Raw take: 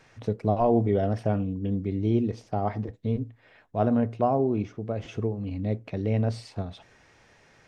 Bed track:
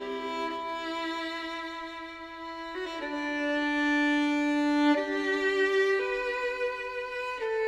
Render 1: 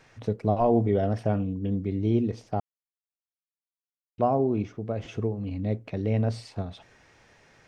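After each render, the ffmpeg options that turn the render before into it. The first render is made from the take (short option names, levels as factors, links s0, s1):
-filter_complex "[0:a]asplit=3[s0][s1][s2];[s0]atrim=end=2.6,asetpts=PTS-STARTPTS,afade=t=out:st=2.596:d=0.004:c=hsin[s3];[s1]atrim=start=2.6:end=4.18,asetpts=PTS-STARTPTS,volume=0[s4];[s2]atrim=start=4.18,asetpts=PTS-STARTPTS,afade=t=in:d=0.004:c=hsin[s5];[s3][s4][s5]concat=n=3:v=0:a=1"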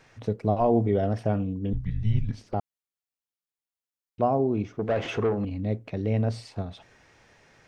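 -filter_complex "[0:a]asettb=1/sr,asplit=3[s0][s1][s2];[s0]atrim=end=1.734[s3];[s1]atrim=start=1.73:end=2.54,asetpts=PTS-STARTPTS,afade=t=in:d=0.004:c=qsin,afade=t=out:st=0.806:d=0.004:c=qsin,afreqshift=-220[s4];[s2]atrim=start=2.536[s5];[s3][s4]acrossfade=d=0.004:c1=hsin:c2=qsin[s6];[s6][s5]acrossfade=d=0.004:c1=qsin:c2=hsin,asettb=1/sr,asplit=3[s7][s8][s9];[s7]atrim=end=4.794[s10];[s8]atrim=start=4.79:end=5.45,asetpts=PTS-STARTPTS,afade=t=in:d=0.004:c=qsin,afade=t=out:st=0.656:d=0.004:c=qsin,asplit=2[s11][s12];[s12]highpass=f=720:p=1,volume=14.1,asoftclip=type=tanh:threshold=0.168[s13];[s11][s13]amix=inputs=2:normalize=0,lowpass=f=1800:p=1,volume=0.501[s14];[s9]atrim=start=5.446[s15];[s10][s14]acrossfade=d=0.004:c1=hsin:c2=qsin[s16];[s16][s15]acrossfade=d=0.004:c1=qsin:c2=hsin"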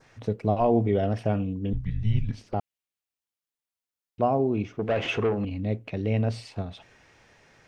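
-af "adynamicequalizer=threshold=0.002:dfrequency=2700:dqfactor=2.1:tfrequency=2700:tqfactor=2.1:attack=5:release=100:ratio=0.375:range=3.5:mode=boostabove:tftype=bell"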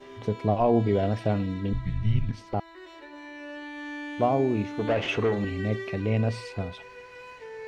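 -filter_complex "[1:a]volume=0.282[s0];[0:a][s0]amix=inputs=2:normalize=0"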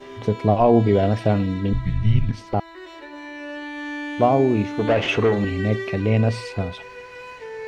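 -af "volume=2.11"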